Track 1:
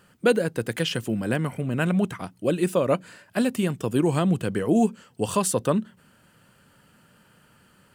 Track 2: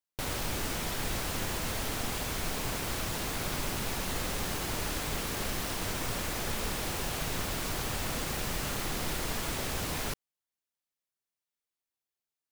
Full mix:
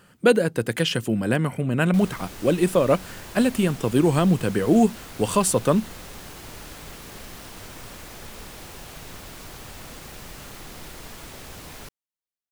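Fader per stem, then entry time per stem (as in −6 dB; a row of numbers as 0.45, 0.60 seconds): +3.0, −6.5 decibels; 0.00, 1.75 seconds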